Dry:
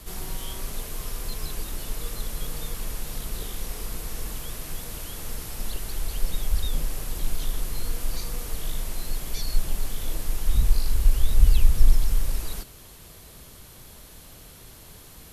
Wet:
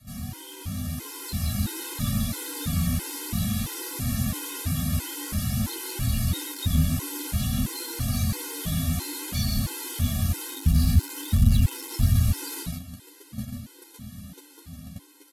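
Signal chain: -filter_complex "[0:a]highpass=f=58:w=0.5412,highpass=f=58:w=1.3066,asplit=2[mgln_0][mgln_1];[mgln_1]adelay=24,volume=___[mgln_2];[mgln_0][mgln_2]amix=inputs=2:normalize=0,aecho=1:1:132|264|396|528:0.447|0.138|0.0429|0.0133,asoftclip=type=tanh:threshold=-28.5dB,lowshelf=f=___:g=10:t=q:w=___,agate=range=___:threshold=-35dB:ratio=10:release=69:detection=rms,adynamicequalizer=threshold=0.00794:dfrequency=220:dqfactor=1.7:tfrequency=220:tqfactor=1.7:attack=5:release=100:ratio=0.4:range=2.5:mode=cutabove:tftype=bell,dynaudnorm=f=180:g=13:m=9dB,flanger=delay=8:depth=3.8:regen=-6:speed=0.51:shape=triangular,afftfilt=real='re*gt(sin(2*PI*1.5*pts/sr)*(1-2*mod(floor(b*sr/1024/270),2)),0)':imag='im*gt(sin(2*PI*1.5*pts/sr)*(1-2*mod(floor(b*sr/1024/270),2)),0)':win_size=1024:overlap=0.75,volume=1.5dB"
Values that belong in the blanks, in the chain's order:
-7dB, 320, 3, -8dB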